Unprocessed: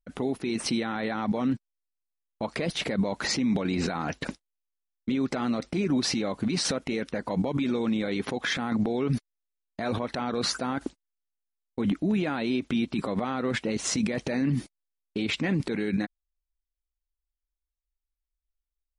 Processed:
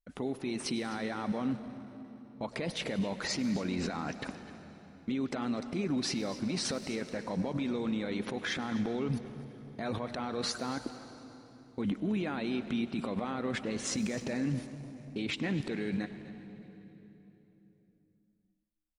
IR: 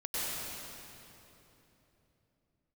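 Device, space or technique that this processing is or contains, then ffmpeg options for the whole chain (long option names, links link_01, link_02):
saturated reverb return: -filter_complex "[0:a]aecho=1:1:249|262:0.106|0.112,asplit=2[link_01][link_02];[1:a]atrim=start_sample=2205[link_03];[link_02][link_03]afir=irnorm=-1:irlink=0,asoftclip=type=tanh:threshold=-19dB,volume=-14.5dB[link_04];[link_01][link_04]amix=inputs=2:normalize=0,volume=-7dB"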